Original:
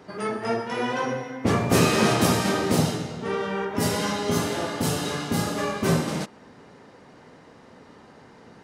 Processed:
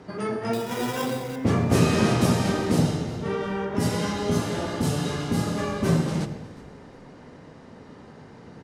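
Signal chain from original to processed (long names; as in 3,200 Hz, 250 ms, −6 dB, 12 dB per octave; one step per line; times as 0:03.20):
low-pass filter 12,000 Hz 12 dB per octave
low-shelf EQ 280 Hz +8 dB
in parallel at −1 dB: downward compressor, threshold −30 dBFS, peak gain reduction 18 dB
0:00.53–0:01.36: on the sum: sample-rate reduction 4,300 Hz, jitter 0%
echo with shifted repeats 362 ms, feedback 36%, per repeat −55 Hz, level −21 dB
on a send at −11 dB: convolution reverb, pre-delay 77 ms
on the sum: level −6 dB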